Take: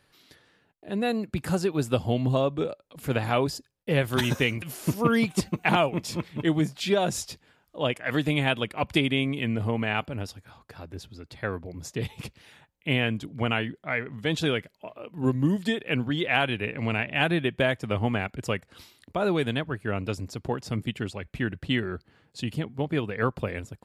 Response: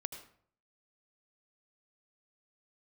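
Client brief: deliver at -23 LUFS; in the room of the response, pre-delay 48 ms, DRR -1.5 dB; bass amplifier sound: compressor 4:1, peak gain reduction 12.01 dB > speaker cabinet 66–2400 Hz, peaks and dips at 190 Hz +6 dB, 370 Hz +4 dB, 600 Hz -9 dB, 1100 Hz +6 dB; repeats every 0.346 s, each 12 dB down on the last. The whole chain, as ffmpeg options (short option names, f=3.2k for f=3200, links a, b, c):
-filter_complex "[0:a]aecho=1:1:346|692|1038:0.251|0.0628|0.0157,asplit=2[a][b];[1:a]atrim=start_sample=2205,adelay=48[c];[b][c]afir=irnorm=-1:irlink=0,volume=2.5dB[d];[a][d]amix=inputs=2:normalize=0,acompressor=threshold=-27dB:ratio=4,highpass=f=66:w=0.5412,highpass=f=66:w=1.3066,equalizer=f=190:t=q:w=4:g=6,equalizer=f=370:t=q:w=4:g=4,equalizer=f=600:t=q:w=4:g=-9,equalizer=f=1.1k:t=q:w=4:g=6,lowpass=f=2.4k:w=0.5412,lowpass=f=2.4k:w=1.3066,volume=7dB"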